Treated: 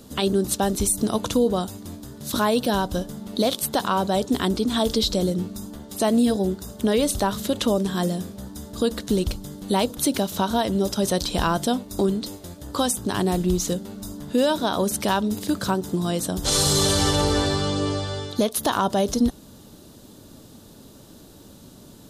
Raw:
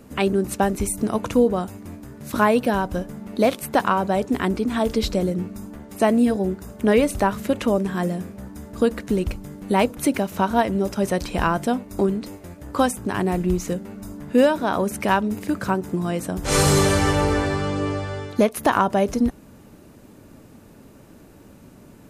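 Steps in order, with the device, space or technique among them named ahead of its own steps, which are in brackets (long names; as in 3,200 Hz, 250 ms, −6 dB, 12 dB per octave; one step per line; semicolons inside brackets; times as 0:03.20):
over-bright horn tweeter (high shelf with overshoot 2,900 Hz +6.5 dB, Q 3; brickwall limiter −11.5 dBFS, peak gain reduction 7.5 dB)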